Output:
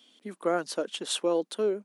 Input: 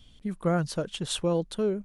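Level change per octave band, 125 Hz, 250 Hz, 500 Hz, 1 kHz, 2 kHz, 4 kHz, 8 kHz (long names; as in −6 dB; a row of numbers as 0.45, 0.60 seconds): −18.0, −4.5, +1.0, +1.0, +1.0, +1.0, +1.0 decibels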